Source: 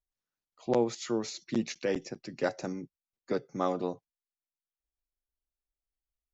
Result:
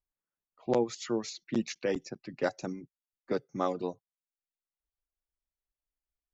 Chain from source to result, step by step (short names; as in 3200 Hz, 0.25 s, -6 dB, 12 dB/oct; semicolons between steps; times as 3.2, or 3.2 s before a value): low-pass opened by the level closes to 1800 Hz, open at -27.5 dBFS; reverb removal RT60 0.63 s